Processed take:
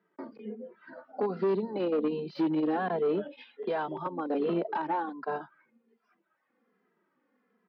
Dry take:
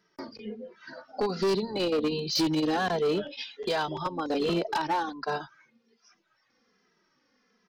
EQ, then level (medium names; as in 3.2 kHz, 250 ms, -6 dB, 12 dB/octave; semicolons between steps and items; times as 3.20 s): high-pass 180 Hz 24 dB/octave; distance through air 420 m; peaking EQ 7.4 kHz -9.5 dB 2.7 oct; 0.0 dB